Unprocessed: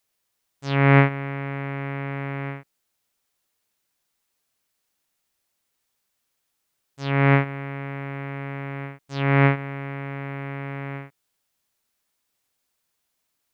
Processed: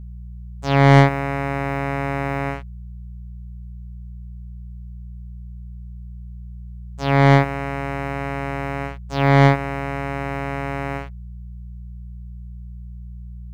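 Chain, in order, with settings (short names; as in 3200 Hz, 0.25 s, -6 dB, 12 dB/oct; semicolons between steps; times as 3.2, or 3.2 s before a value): bell 750 Hz +7 dB 1.2 oct; sample leveller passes 2; buzz 60 Hz, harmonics 3, -32 dBFS -8 dB/oct; gain -3 dB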